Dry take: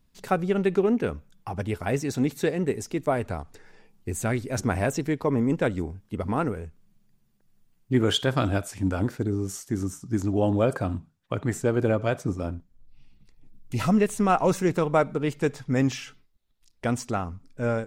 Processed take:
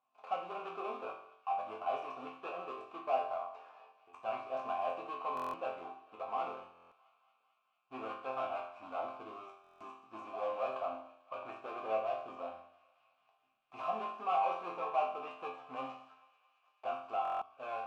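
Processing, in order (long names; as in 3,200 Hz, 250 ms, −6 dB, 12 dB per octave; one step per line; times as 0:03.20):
gap after every zero crossing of 0.23 ms
parametric band 1,000 Hz +10 dB 0.69 octaves
0:03.37–0:04.19: compressor whose output falls as the input rises −35 dBFS, ratio −0.5
mid-hump overdrive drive 22 dB, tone 3,700 Hz, clips at −5.5 dBFS
formant filter a
resonators tuned to a chord F2 major, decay 0.6 s
feedback echo with a high-pass in the loop 221 ms, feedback 80%, high-pass 820 Hz, level −21 dB
buffer that repeats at 0:05.35/0:06.73/0:09.62/0:17.23, samples 1,024, times 7
level +5 dB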